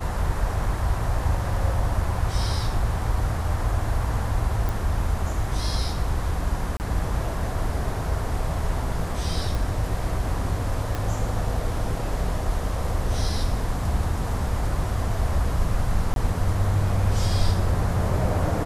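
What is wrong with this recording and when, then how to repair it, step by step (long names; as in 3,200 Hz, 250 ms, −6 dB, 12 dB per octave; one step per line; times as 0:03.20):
0:04.69: click
0:06.77–0:06.80: drop-out 29 ms
0:09.55: click
0:10.95: click
0:16.14–0:16.16: drop-out 22 ms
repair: click removal
repair the gap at 0:06.77, 29 ms
repair the gap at 0:16.14, 22 ms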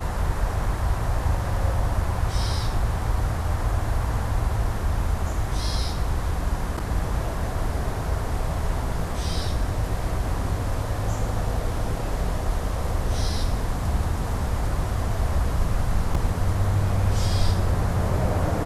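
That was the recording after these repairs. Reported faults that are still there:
0:10.95: click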